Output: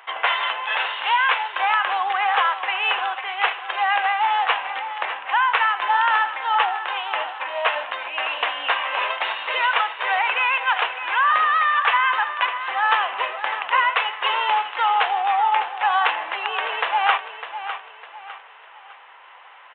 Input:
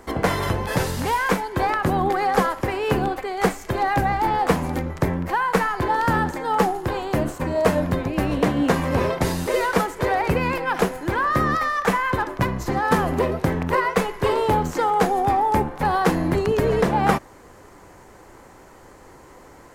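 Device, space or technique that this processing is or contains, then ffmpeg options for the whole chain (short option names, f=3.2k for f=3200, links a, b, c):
musical greeting card: -af "aecho=1:1:604|1208|1812|2416:0.282|0.104|0.0386|0.0143,aresample=8000,aresample=44100,highpass=f=830:w=0.5412,highpass=f=830:w=1.3066,equalizer=f=2.8k:t=o:w=0.44:g=10,volume=4dB"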